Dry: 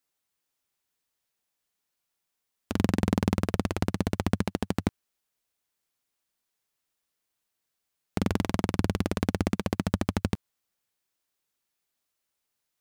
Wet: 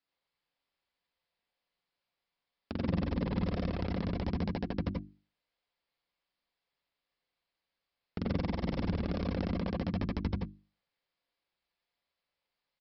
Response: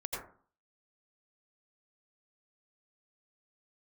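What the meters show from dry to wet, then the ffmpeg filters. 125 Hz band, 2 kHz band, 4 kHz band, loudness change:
-4.5 dB, -8.0 dB, -7.5 dB, -5.5 dB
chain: -filter_complex "[0:a]bandreject=f=50:t=h:w=6,bandreject=f=100:t=h:w=6,bandreject=f=150:t=h:w=6,bandreject=f=200:t=h:w=6,bandreject=f=250:t=h:w=6,bandreject=f=300:t=h:w=6,bandreject=f=350:t=h:w=6,aresample=11025,asoftclip=type=tanh:threshold=0.0891,aresample=44100[s0];[1:a]atrim=start_sample=2205,atrim=end_sample=4410[s1];[s0][s1]afir=irnorm=-1:irlink=0"

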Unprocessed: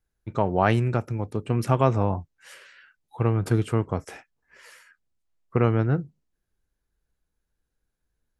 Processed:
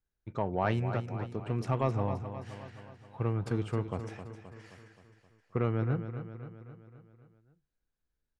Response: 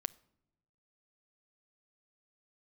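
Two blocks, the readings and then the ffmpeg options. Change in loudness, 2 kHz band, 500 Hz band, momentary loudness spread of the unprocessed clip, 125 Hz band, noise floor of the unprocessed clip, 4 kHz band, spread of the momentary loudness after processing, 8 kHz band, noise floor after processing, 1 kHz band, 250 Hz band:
-9.0 dB, -8.5 dB, -8.5 dB, 10 LU, -8.0 dB, -80 dBFS, -8.5 dB, 20 LU, under -10 dB, -85 dBFS, -8.5 dB, -8.5 dB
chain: -filter_complex "[0:a]lowpass=6400,asoftclip=type=tanh:threshold=0.447,asplit=2[s0][s1];[s1]aecho=0:1:263|526|789|1052|1315|1578:0.316|0.177|0.0992|0.0555|0.0311|0.0174[s2];[s0][s2]amix=inputs=2:normalize=0,volume=0.398"

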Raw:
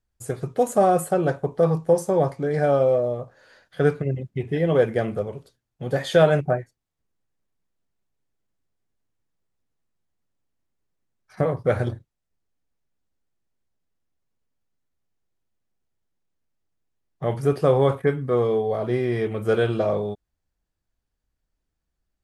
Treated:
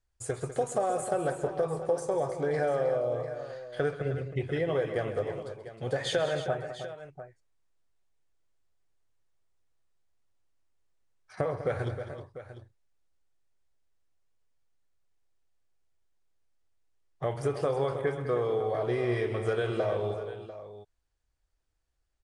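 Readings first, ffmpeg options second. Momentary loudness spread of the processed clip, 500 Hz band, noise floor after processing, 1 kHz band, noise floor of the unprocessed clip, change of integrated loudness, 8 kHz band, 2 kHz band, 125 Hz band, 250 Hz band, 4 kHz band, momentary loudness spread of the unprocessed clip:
13 LU, -8.0 dB, -76 dBFS, -8.0 dB, -81 dBFS, -8.5 dB, no reading, -5.5 dB, -9.5 dB, -10.5 dB, -3.0 dB, 12 LU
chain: -filter_complex "[0:a]equalizer=f=200:w=1.3:g=-12,acompressor=threshold=0.0501:ratio=6,asplit=2[s0][s1];[s1]aecho=0:1:132|200|313|696:0.168|0.251|0.282|0.2[s2];[s0][s2]amix=inputs=2:normalize=0,aresample=22050,aresample=44100"

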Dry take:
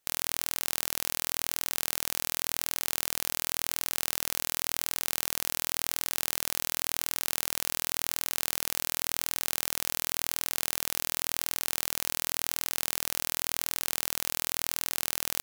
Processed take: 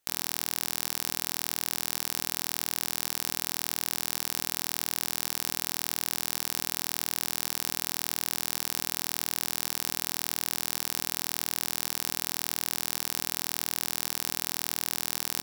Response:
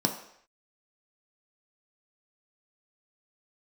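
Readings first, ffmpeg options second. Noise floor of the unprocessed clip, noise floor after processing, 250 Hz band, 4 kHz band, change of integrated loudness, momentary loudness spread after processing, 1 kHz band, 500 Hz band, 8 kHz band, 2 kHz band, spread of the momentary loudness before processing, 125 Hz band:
-77 dBFS, -51 dBFS, +2.0 dB, 0.0 dB, 0.0 dB, 0 LU, +0.5 dB, -0.5 dB, 0.0 dB, 0.0 dB, 0 LU, +1.0 dB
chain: -filter_complex "[0:a]asplit=2[s0][s1];[1:a]atrim=start_sample=2205,adelay=15[s2];[s1][s2]afir=irnorm=-1:irlink=0,volume=0.0562[s3];[s0][s3]amix=inputs=2:normalize=0"

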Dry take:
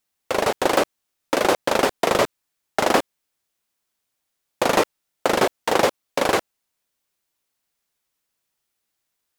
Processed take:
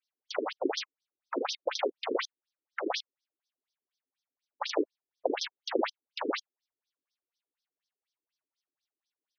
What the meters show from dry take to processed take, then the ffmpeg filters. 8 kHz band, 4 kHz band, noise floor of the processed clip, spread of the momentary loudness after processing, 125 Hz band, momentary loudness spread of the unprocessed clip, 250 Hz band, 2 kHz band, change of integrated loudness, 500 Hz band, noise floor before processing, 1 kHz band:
-15.5 dB, -9.0 dB, under -85 dBFS, 6 LU, under -35 dB, 7 LU, -10.5 dB, -14.0 dB, -12.5 dB, -12.5 dB, -78 dBFS, -15.0 dB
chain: -af "bass=f=250:g=11,treble=f=4000:g=7,afftfilt=real='re*between(b*sr/1024,310*pow(4600/310,0.5+0.5*sin(2*PI*4.1*pts/sr))/1.41,310*pow(4600/310,0.5+0.5*sin(2*PI*4.1*pts/sr))*1.41)':imag='im*between(b*sr/1024,310*pow(4600/310,0.5+0.5*sin(2*PI*4.1*pts/sr))/1.41,310*pow(4600/310,0.5+0.5*sin(2*PI*4.1*pts/sr))*1.41)':win_size=1024:overlap=0.75,volume=0.501"

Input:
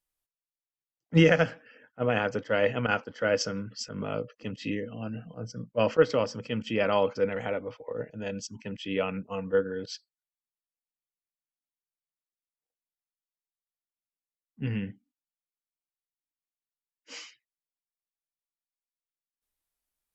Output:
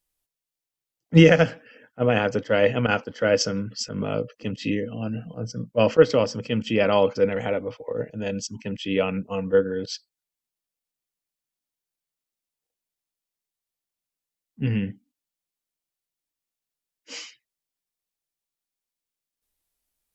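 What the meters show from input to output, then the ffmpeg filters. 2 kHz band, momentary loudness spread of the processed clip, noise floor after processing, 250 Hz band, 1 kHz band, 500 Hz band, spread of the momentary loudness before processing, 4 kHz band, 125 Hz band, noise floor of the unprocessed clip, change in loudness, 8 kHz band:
+3.5 dB, 14 LU, under -85 dBFS, +7.0 dB, +3.5 dB, +6.0 dB, 15 LU, +6.0 dB, +7.0 dB, under -85 dBFS, +6.0 dB, no reading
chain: -af "equalizer=f=1300:t=o:w=1.6:g=-4.5,volume=2.24"

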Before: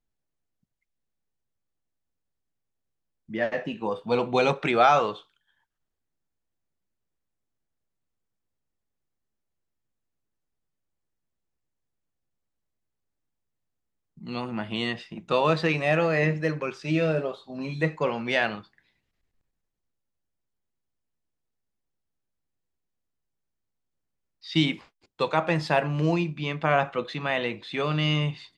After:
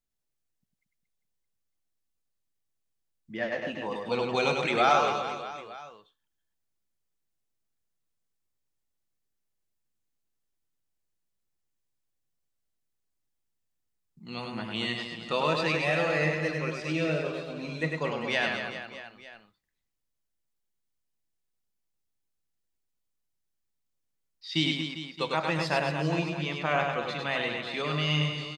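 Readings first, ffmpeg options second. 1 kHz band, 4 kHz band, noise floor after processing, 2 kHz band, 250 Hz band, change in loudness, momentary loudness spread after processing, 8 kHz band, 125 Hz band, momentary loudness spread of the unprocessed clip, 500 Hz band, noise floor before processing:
-3.0 dB, +1.0 dB, -80 dBFS, -1.0 dB, -4.5 dB, -3.0 dB, 12 LU, no reading, -4.5 dB, 11 LU, -4.0 dB, -82 dBFS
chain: -filter_complex "[0:a]highshelf=f=2400:g=8,asplit=2[s0][s1];[s1]aecho=0:1:100|230|399|618.7|904.3:0.631|0.398|0.251|0.158|0.1[s2];[s0][s2]amix=inputs=2:normalize=0,volume=0.473"

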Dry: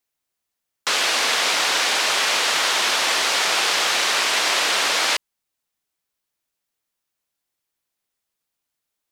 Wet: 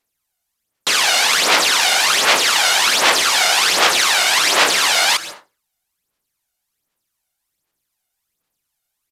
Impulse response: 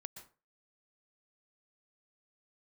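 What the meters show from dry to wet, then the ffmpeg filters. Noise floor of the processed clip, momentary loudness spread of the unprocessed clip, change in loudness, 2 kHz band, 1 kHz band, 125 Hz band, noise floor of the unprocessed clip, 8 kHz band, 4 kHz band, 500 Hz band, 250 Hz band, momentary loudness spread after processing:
-77 dBFS, 2 LU, +5.0 dB, +5.0 dB, +5.5 dB, no reading, -81 dBFS, +6.0 dB, +5.0 dB, +5.0 dB, +5.5 dB, 3 LU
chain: -filter_complex "[0:a]asplit=2[s0][s1];[1:a]atrim=start_sample=2205,asetrate=39690,aresample=44100,highshelf=f=7400:g=9.5[s2];[s1][s2]afir=irnorm=-1:irlink=0,volume=1.33[s3];[s0][s3]amix=inputs=2:normalize=0,aphaser=in_gain=1:out_gain=1:delay=1.4:decay=0.6:speed=1.3:type=sinusoidal,acrusher=bits=5:mode=log:mix=0:aa=0.000001,aresample=32000,aresample=44100,volume=0.75"

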